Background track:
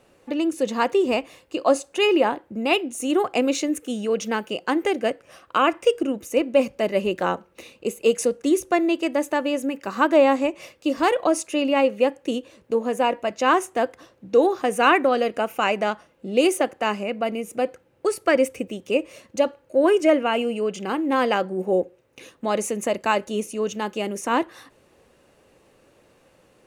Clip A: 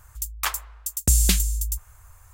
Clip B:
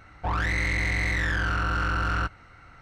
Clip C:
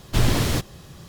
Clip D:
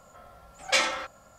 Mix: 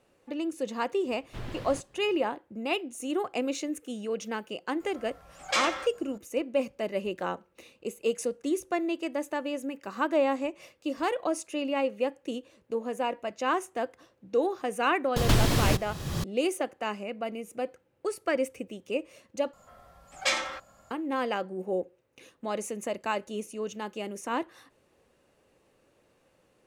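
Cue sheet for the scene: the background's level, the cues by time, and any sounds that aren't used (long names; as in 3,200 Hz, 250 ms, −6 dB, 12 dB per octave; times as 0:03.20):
background track −9 dB
0:01.20: mix in C −16.5 dB + bass and treble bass −4 dB, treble −14 dB
0:04.80: mix in D −2.5 dB + brickwall limiter −13 dBFS
0:15.16: mix in C −3 dB + multiband upward and downward compressor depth 100%
0:19.53: overwrite with D −3.5 dB
not used: A, B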